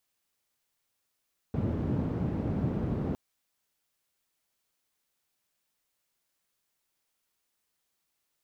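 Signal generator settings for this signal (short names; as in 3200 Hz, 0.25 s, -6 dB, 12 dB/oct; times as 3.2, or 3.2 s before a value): noise band 81–210 Hz, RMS -30.5 dBFS 1.61 s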